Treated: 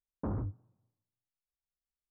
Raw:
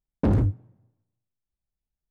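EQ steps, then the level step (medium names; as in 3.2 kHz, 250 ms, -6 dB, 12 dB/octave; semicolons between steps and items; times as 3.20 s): four-pole ladder low-pass 1.4 kHz, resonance 50%; -5.0 dB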